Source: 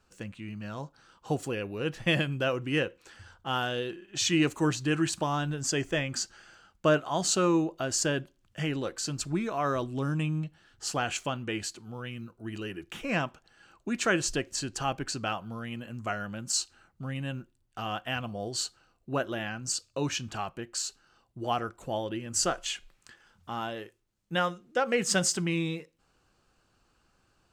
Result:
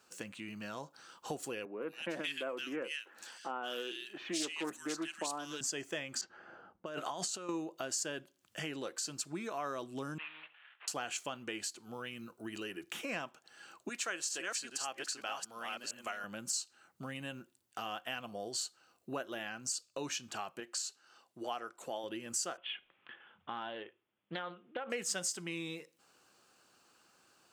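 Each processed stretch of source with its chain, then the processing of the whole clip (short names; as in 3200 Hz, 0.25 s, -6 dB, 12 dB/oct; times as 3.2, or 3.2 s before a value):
1.65–5.61 HPF 200 Hz 24 dB/oct + bands offset in time lows, highs 0.17 s, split 1800 Hz + Doppler distortion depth 0.2 ms
6.21–7.49 low-pass opened by the level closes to 690 Hz, open at -24.5 dBFS + negative-ratio compressor -34 dBFS
10.18–10.88 CVSD 16 kbps + HPF 1300 Hz + flutter echo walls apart 11.4 m, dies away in 0.25 s
13.89–16.24 reverse delay 0.404 s, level -4 dB + HPF 740 Hz 6 dB/oct
20.6–22.04 HPF 330 Hz 6 dB/oct + high shelf 10000 Hz -6.5 dB
22.57–24.9 Chebyshev low-pass 3400 Hz, order 6 + compressor 5:1, threshold -29 dBFS + Doppler distortion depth 0.29 ms
whole clip: Bessel high-pass 300 Hz, order 2; high shelf 5700 Hz +8 dB; compressor 2.5:1, threshold -44 dBFS; gain +2.5 dB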